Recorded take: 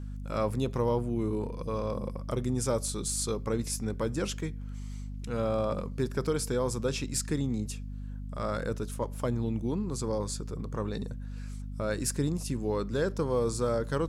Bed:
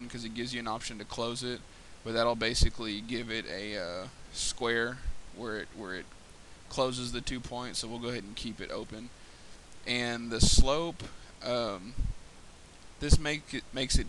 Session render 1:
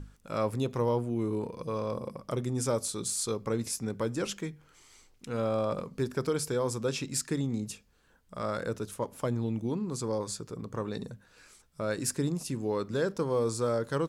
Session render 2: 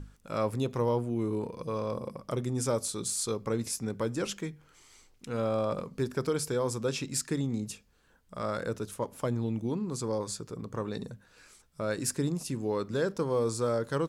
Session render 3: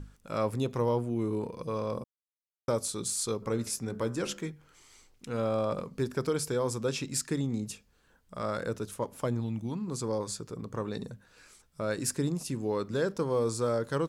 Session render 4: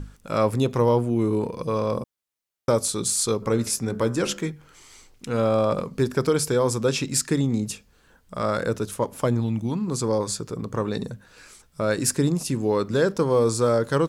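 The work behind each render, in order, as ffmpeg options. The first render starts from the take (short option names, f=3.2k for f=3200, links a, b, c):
-af "bandreject=f=50:t=h:w=6,bandreject=f=100:t=h:w=6,bandreject=f=150:t=h:w=6,bandreject=f=200:t=h:w=6,bandreject=f=250:t=h:w=6"
-af anull
-filter_complex "[0:a]asplit=3[a][b][c];[a]afade=t=out:st=3.41:d=0.02[d];[b]bandreject=f=71.77:t=h:w=4,bandreject=f=143.54:t=h:w=4,bandreject=f=215.31:t=h:w=4,bandreject=f=287.08:t=h:w=4,bandreject=f=358.85:t=h:w=4,bandreject=f=430.62:t=h:w=4,bandreject=f=502.39:t=h:w=4,bandreject=f=574.16:t=h:w=4,bandreject=f=645.93:t=h:w=4,bandreject=f=717.7:t=h:w=4,bandreject=f=789.47:t=h:w=4,bandreject=f=861.24:t=h:w=4,bandreject=f=933.01:t=h:w=4,bandreject=f=1.00478k:t=h:w=4,bandreject=f=1.07655k:t=h:w=4,bandreject=f=1.14832k:t=h:w=4,bandreject=f=1.22009k:t=h:w=4,bandreject=f=1.29186k:t=h:w=4,bandreject=f=1.36363k:t=h:w=4,bandreject=f=1.4354k:t=h:w=4,bandreject=f=1.50717k:t=h:w=4,bandreject=f=1.57894k:t=h:w=4,bandreject=f=1.65071k:t=h:w=4,bandreject=f=1.72248k:t=h:w=4,bandreject=f=1.79425k:t=h:w=4,bandreject=f=1.86602k:t=h:w=4,bandreject=f=1.93779k:t=h:w=4,afade=t=in:st=3.41:d=0.02,afade=t=out:st=4.51:d=0.02[e];[c]afade=t=in:st=4.51:d=0.02[f];[d][e][f]amix=inputs=3:normalize=0,asettb=1/sr,asplit=3[g][h][i];[g]atrim=end=9.404[j];[h]atrim=start=9.4:end=9.88,asetpts=PTS-STARTPTS,afade=t=in:d=0.004:c=qsin,afade=t=out:st=0.476:d=0.004:c=qsin,equalizer=f=420:w=1.5:g=-9.5[k];[i]atrim=start=9.876[l];[j][k]acrossfade=d=0.004:c1=hsin:c2=qsin[m];[m][l]acrossfade=d=0.004:c1=qsin:c2=hsin,asplit=3[n][o][p];[n]atrim=end=2.04,asetpts=PTS-STARTPTS,afade=t=out:st=2.036:d=0.004:c=hsin[q];[o]atrim=start=2.04:end=2.68,asetpts=PTS-STARTPTS,volume=0[r];[p]atrim=start=2.68,asetpts=PTS-STARTPTS,afade=t=in:d=0.004:c=hsin[s];[q][r][s]concat=n=3:v=0:a=1"
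-af "volume=8.5dB"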